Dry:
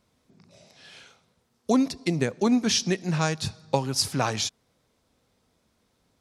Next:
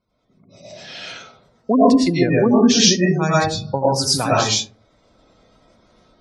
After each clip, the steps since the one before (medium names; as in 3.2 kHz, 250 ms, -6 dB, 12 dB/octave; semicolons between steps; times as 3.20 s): spectral gate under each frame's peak -20 dB strong; level rider gain up to 15 dB; algorithmic reverb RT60 0.41 s, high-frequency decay 0.4×, pre-delay 70 ms, DRR -7 dB; trim -6 dB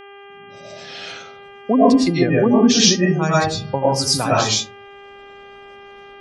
mains buzz 400 Hz, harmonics 8, -41 dBFS -4 dB/octave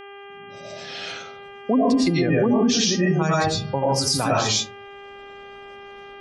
peak limiter -11.5 dBFS, peak gain reduction 10 dB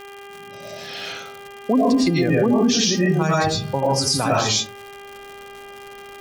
crackle 190 per s -32 dBFS; trim +1.5 dB